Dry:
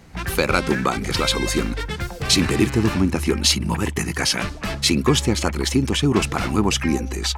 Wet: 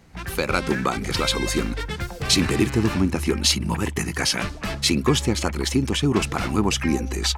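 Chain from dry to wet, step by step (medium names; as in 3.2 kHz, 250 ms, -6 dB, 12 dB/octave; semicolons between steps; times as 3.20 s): level rider; endings held to a fixed fall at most 250 dB/s; trim -5.5 dB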